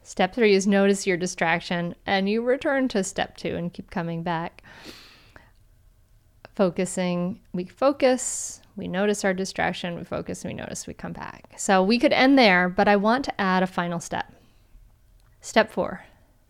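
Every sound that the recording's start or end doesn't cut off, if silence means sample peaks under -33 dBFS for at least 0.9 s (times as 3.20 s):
6.45–14.22 s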